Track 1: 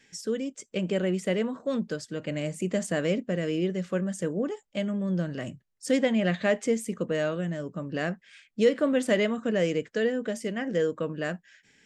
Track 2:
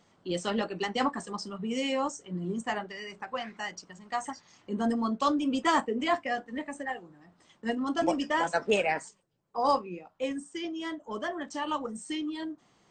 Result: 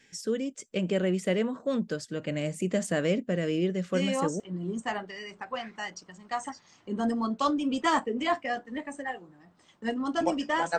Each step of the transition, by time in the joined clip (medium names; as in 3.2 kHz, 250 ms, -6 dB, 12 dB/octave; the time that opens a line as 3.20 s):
track 1
4.17 s: go over to track 2 from 1.98 s, crossfade 0.46 s logarithmic